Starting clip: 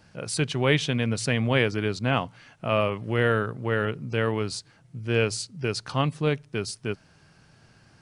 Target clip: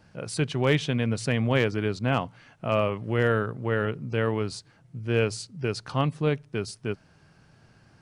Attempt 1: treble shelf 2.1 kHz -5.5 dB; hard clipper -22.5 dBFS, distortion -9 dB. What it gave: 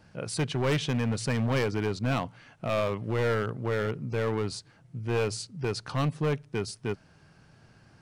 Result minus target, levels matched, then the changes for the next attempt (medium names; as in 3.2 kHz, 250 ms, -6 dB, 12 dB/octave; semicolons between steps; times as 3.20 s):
hard clipper: distortion +24 dB
change: hard clipper -12 dBFS, distortion -33 dB